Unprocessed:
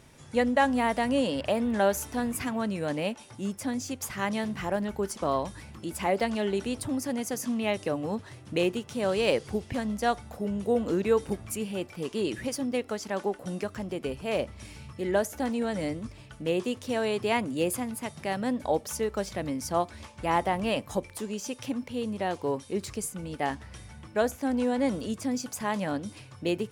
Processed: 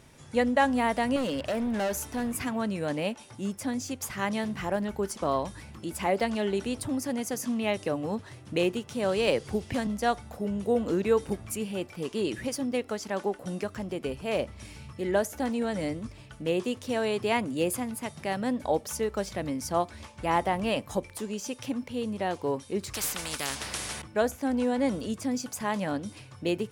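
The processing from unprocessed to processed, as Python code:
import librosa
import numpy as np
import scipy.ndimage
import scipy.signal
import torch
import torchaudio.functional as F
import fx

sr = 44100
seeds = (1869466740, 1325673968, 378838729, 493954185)

y = fx.clip_hard(x, sr, threshold_db=-26.0, at=(1.16, 2.34))
y = fx.band_squash(y, sr, depth_pct=40, at=(9.27, 9.87))
y = fx.spectral_comp(y, sr, ratio=4.0, at=(22.94, 24.02))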